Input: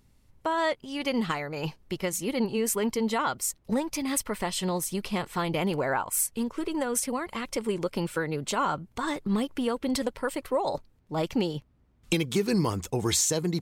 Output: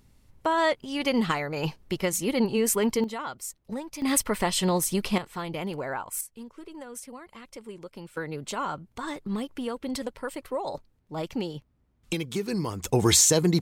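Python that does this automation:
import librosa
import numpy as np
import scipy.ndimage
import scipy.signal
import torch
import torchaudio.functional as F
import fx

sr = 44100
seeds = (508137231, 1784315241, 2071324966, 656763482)

y = fx.gain(x, sr, db=fx.steps((0.0, 3.0), (3.04, -7.0), (4.02, 4.5), (5.18, -5.0), (6.21, -12.5), (8.17, -4.0), (12.84, 6.0)))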